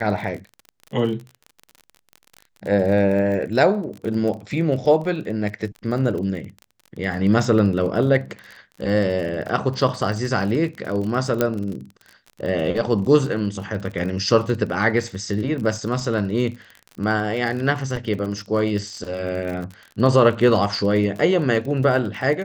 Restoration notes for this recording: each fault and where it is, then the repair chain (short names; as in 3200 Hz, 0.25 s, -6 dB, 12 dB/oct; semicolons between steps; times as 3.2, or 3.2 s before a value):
crackle 35/s -29 dBFS
11.41 pop -5 dBFS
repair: de-click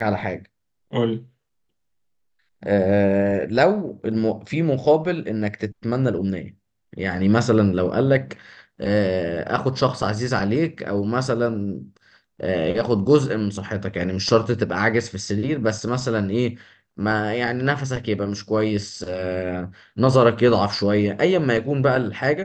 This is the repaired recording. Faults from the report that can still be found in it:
none